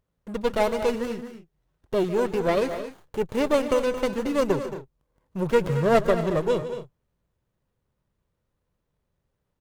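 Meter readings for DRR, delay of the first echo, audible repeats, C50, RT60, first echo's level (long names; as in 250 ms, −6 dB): no reverb audible, 149 ms, 3, no reverb audible, no reverb audible, −16.5 dB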